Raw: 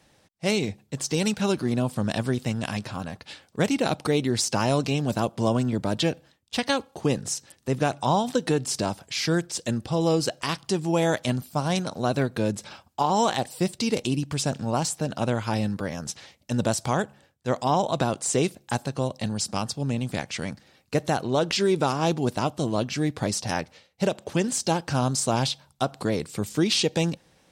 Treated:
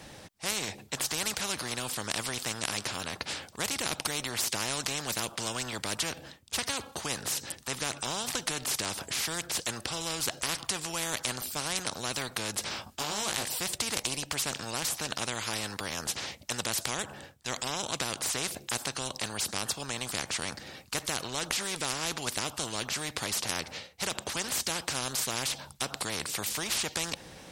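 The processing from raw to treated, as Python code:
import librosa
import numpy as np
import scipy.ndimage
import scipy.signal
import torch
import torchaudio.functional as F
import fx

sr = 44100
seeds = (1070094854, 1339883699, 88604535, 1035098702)

y = fx.doubler(x, sr, ms=19.0, db=-4.5, at=(12.64, 13.48))
y = fx.spectral_comp(y, sr, ratio=4.0)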